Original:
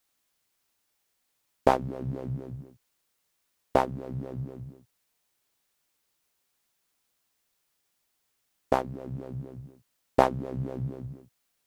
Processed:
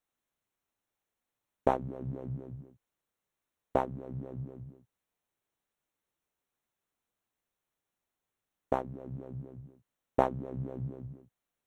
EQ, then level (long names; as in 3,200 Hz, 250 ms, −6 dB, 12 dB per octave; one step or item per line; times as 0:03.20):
Butterworth band-reject 4,800 Hz, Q 4
high-shelf EQ 2,100 Hz −11 dB
−4.5 dB